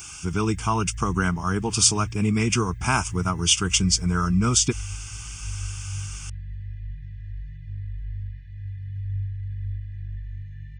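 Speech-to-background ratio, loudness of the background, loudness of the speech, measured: 14.0 dB, −36.5 LKFS, −22.5 LKFS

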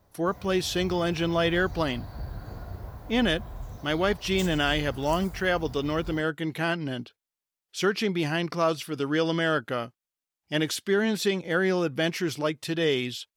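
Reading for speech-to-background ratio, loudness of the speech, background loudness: 14.5 dB, −27.0 LKFS, −41.5 LKFS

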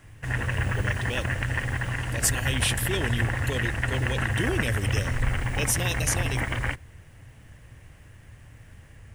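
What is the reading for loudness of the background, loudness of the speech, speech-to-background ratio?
−28.5 LKFS, −30.0 LKFS, −1.5 dB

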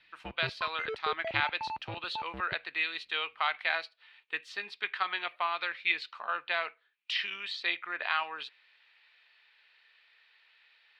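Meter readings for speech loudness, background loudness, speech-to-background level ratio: −33.0 LKFS, −40.5 LKFS, 7.5 dB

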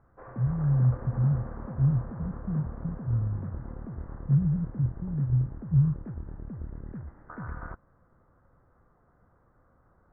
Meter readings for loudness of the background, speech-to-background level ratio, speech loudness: −40.5 LKFS, 12.0 dB, −28.5 LKFS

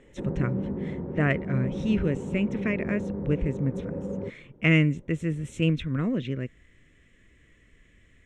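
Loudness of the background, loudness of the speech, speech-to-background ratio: −33.5 LKFS, −27.5 LKFS, 6.0 dB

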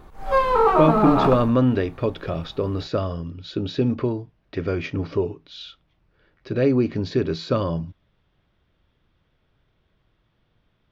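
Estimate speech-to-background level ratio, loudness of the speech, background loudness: −3.5 dB, −23.5 LKFS, −20.0 LKFS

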